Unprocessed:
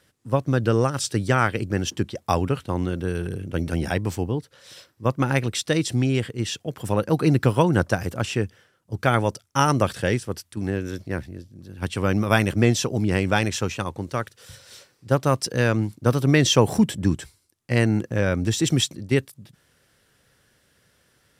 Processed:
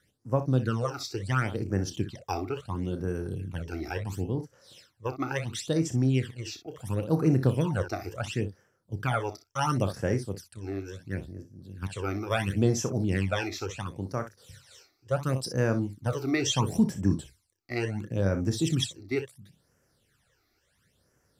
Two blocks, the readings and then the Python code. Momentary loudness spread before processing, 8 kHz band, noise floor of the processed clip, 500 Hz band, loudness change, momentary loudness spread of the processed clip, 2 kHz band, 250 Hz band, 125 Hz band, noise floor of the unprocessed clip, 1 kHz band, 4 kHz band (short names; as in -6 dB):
11 LU, -8.0 dB, -72 dBFS, -7.5 dB, -6.5 dB, 12 LU, -9.0 dB, -6.0 dB, -5.5 dB, -65 dBFS, -8.5 dB, -8.0 dB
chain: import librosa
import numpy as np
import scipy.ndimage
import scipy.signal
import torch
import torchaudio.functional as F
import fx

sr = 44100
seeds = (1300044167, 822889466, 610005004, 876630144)

y = fx.room_early_taps(x, sr, ms=(31, 61), db=(-10.5, -11.5))
y = fx.phaser_stages(y, sr, stages=12, low_hz=160.0, high_hz=3700.0, hz=0.72, feedback_pct=30)
y = y * librosa.db_to_amplitude(-6.0)